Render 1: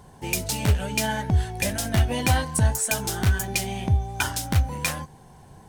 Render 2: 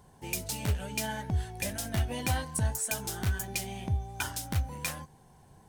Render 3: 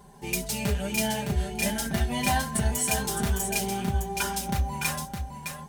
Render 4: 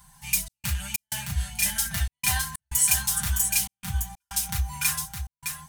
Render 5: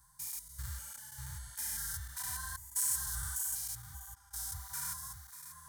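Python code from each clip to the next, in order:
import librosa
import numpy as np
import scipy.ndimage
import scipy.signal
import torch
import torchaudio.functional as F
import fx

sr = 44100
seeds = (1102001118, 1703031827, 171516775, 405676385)

y1 = fx.high_shelf(x, sr, hz=9300.0, db=4.5)
y1 = y1 * librosa.db_to_amplitude(-9.0)
y2 = y1 + 0.94 * np.pad(y1, (int(5.0 * sr / 1000.0), 0))[:len(y1)]
y2 = y2 + 10.0 ** (-6.5 / 20.0) * np.pad(y2, (int(612 * sr / 1000.0), 0))[:len(y2)]
y2 = fx.hpss(y2, sr, part='harmonic', gain_db=5)
y3 = scipy.signal.sosfilt(scipy.signal.cheby1(2, 1.0, [120.0, 1200.0], 'bandstop', fs=sr, output='sos'), y2)
y3 = fx.high_shelf(y3, sr, hz=5500.0, db=11.0)
y3 = fx.step_gate(y3, sr, bpm=94, pattern='xxx.xx.xxx', floor_db=-60.0, edge_ms=4.5)
y4 = fx.spec_steps(y3, sr, hold_ms=200)
y4 = fx.fixed_phaser(y4, sr, hz=700.0, stages=6)
y4 = fx.flanger_cancel(y4, sr, hz=1.6, depth_ms=5.1)
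y4 = y4 * librosa.db_to_amplitude(-4.0)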